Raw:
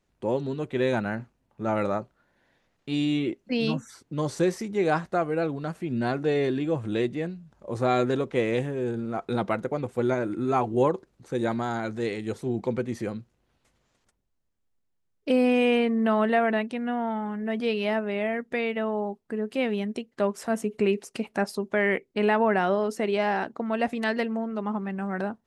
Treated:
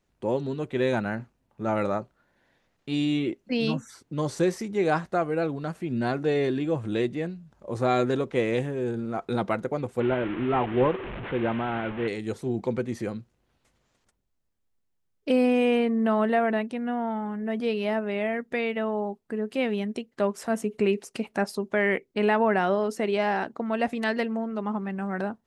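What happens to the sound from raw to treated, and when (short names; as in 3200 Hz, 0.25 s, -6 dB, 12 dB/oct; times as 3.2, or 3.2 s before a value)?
10–12.08 delta modulation 16 kbps, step -29.5 dBFS
15.46–18.02 bell 3000 Hz -3.5 dB 2.2 oct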